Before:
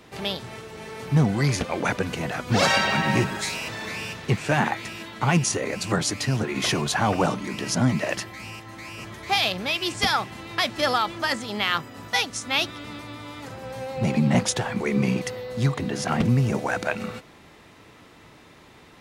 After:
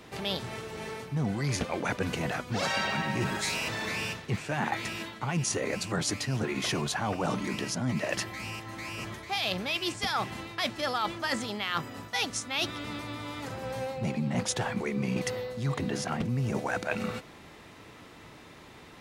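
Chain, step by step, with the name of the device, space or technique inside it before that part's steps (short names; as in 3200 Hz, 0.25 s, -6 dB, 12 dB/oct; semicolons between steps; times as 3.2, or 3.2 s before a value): compression on the reversed sound (reverse; compressor 6:1, threshold -27 dBFS, peak gain reduction 12 dB; reverse)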